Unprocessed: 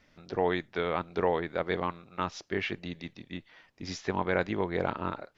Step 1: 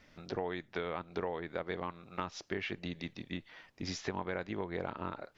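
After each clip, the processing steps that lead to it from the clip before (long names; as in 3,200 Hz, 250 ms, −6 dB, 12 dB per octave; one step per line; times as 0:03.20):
downward compressor 4 to 1, threshold −37 dBFS, peak gain reduction 13 dB
level +2 dB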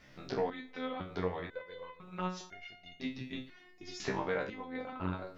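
rectangular room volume 910 cubic metres, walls mixed, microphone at 0.32 metres
step-sequenced resonator 2 Hz 66–710 Hz
level +11 dB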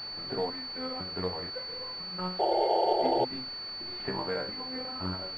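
sound drawn into the spectrogram noise, 0:02.39–0:03.25, 330–920 Hz −27 dBFS
bit-depth reduction 8 bits, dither triangular
switching amplifier with a slow clock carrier 4,500 Hz
level +1 dB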